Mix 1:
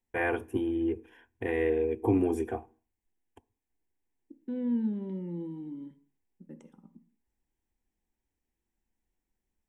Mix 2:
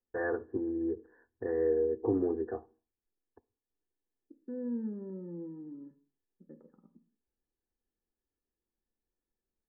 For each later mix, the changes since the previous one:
master: add Chebyshev low-pass with heavy ripple 1,800 Hz, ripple 9 dB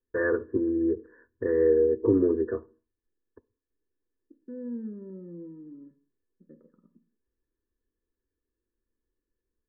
first voice +7.5 dB
master: add Butterworth band-reject 770 Hz, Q 2.1

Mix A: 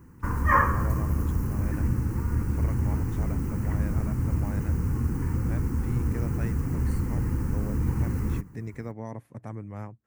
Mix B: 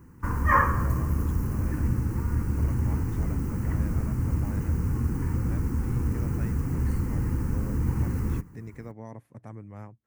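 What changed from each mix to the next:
speech −4.5 dB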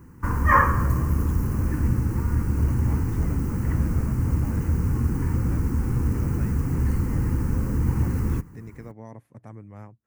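background +3.5 dB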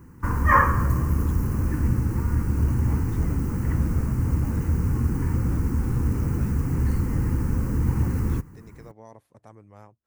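speech: add octave-band graphic EQ 125/250/2,000/4,000 Hz −10/−7/−6/+6 dB

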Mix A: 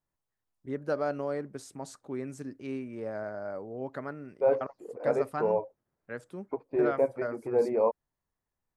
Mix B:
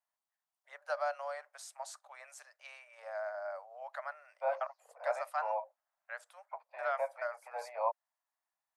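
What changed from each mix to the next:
master: add Butterworth high-pass 610 Hz 72 dB per octave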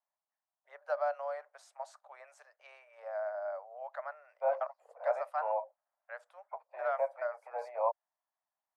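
master: add spectral tilt −4.5 dB per octave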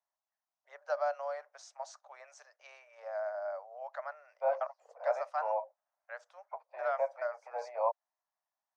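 master: add low-pass with resonance 6,000 Hz, resonance Q 4

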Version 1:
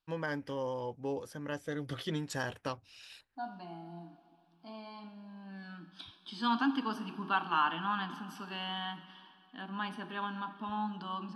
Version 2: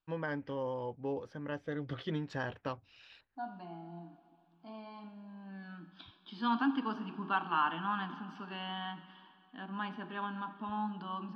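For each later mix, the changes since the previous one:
master: add high-frequency loss of the air 240 metres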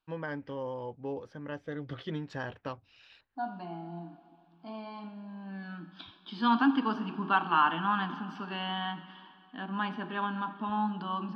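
second voice +6.0 dB

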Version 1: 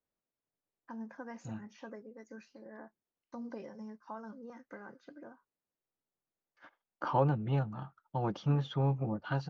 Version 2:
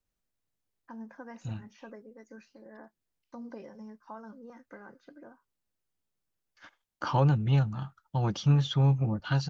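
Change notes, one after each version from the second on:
second voice: remove resonant band-pass 560 Hz, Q 0.57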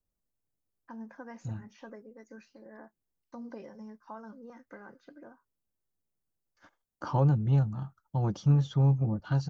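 second voice: add parametric band 2,800 Hz −13 dB 2.1 octaves

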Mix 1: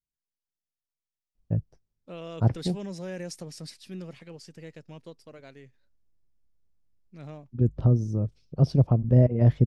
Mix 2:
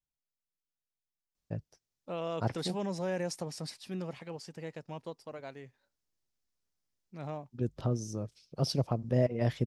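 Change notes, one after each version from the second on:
first voice: add spectral tilt +4 dB per octave
second voice: add parametric band 860 Hz +9.5 dB 1.1 octaves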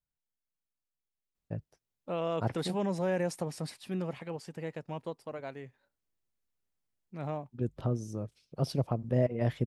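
second voice +3.5 dB
master: add parametric band 5,400 Hz −8.5 dB 1 octave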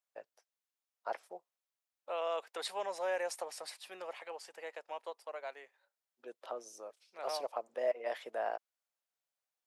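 first voice: entry −1.35 s
master: add high-pass filter 560 Hz 24 dB per octave

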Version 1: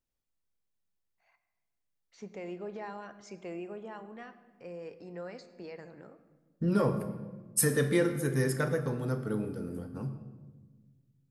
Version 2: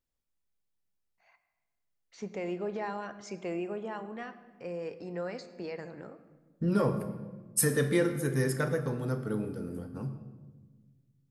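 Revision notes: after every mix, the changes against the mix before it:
first voice +5.5 dB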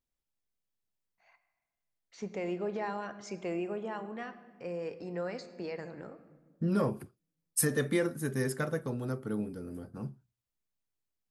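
second voice: send off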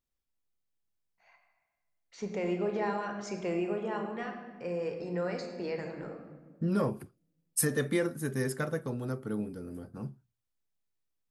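first voice: send +9.5 dB

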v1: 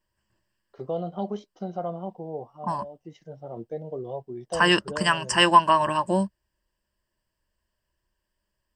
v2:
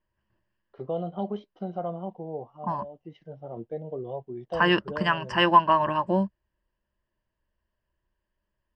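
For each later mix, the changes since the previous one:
first voice: add parametric band 3,100 Hz +5 dB 0.76 octaves
master: add high-frequency loss of the air 310 metres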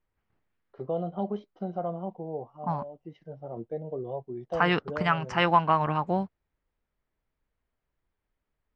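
first voice: add parametric band 3,100 Hz −5 dB 0.76 octaves
second voice: remove EQ curve with evenly spaced ripples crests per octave 1.3, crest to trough 13 dB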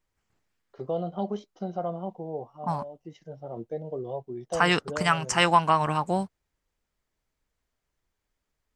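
master: remove high-frequency loss of the air 310 metres

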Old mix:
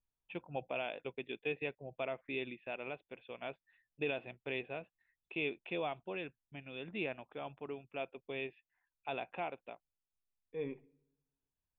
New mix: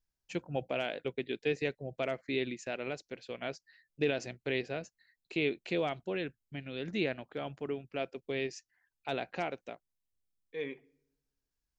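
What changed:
second voice: add spectral tilt +4.5 dB per octave
master: remove Chebyshev low-pass with heavy ripple 3,600 Hz, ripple 9 dB

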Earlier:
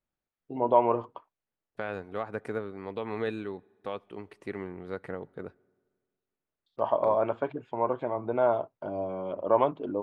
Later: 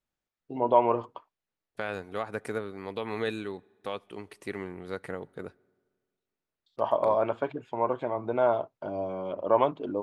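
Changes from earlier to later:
first voice: remove low-pass filter 2,300 Hz 6 dB per octave
second voice: remove low-pass filter 1,800 Hz 6 dB per octave

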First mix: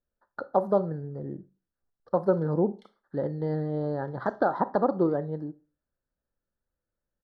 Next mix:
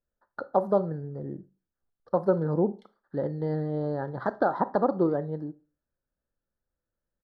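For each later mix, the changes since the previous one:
background: send −10.5 dB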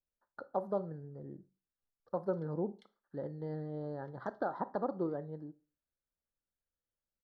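speech −11.0 dB
background: send −7.5 dB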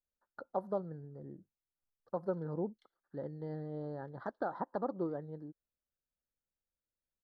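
background −7.0 dB
reverb: off

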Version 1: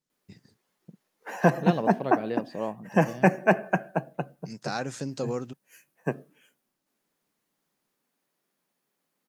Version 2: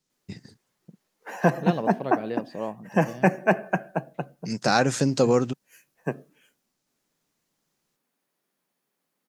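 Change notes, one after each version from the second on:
first voice +11.0 dB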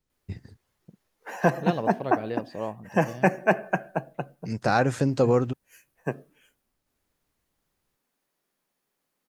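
first voice: add parametric band 6,000 Hz −11.5 dB 1.8 octaves
master: add low shelf with overshoot 110 Hz +12 dB, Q 1.5

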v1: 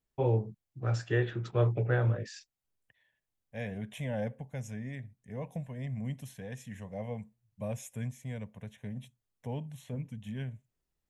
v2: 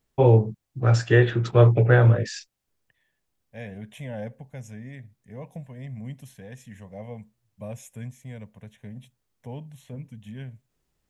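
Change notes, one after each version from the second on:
first voice +11.5 dB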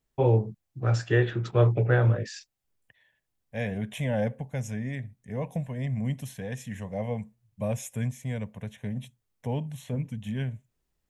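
first voice −5.5 dB
second voice +7.0 dB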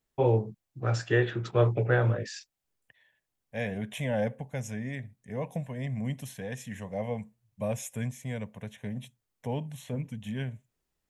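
master: add low-shelf EQ 160 Hz −6.5 dB

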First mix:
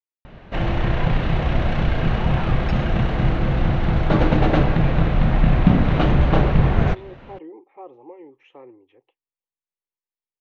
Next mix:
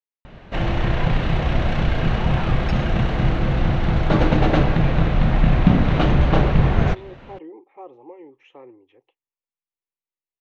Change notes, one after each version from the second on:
master: add high-shelf EQ 5,800 Hz +8 dB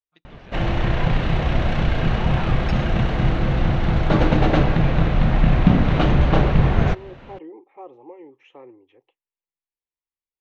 first voice: entry −2.45 s

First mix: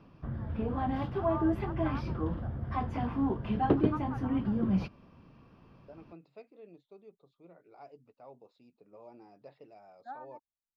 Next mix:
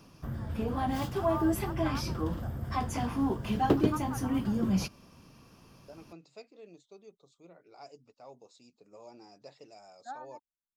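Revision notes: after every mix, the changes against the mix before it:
master: remove high-frequency loss of the air 380 metres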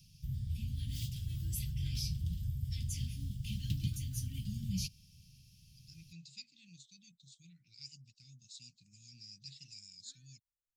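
first voice +4.0 dB
second voice +10.5 dB
master: add inverse Chebyshev band-stop filter 430–1,100 Hz, stop band 70 dB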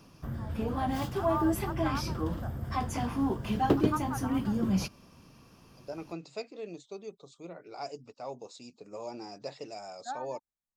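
master: remove inverse Chebyshev band-stop filter 430–1,100 Hz, stop band 70 dB

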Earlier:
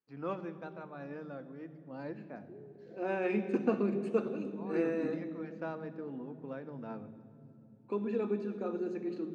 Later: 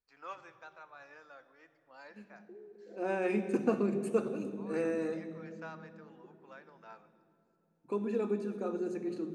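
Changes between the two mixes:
first voice: add high-pass filter 1,100 Hz 12 dB per octave
master: remove Chebyshev band-pass filter 170–3,800 Hz, order 2

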